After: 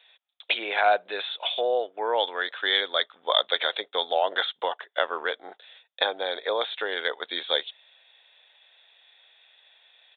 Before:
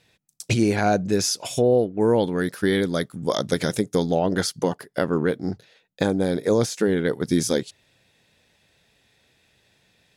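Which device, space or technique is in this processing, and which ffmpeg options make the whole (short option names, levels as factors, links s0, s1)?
musical greeting card: -af "aresample=8000,aresample=44100,highpass=f=640:w=0.5412,highpass=f=640:w=1.3066,equalizer=f=3500:t=o:w=0.29:g=10.5,volume=1.41"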